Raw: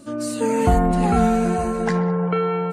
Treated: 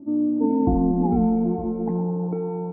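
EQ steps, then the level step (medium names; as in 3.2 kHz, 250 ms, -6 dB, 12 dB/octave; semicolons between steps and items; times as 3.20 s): cascade formant filter u; +8.0 dB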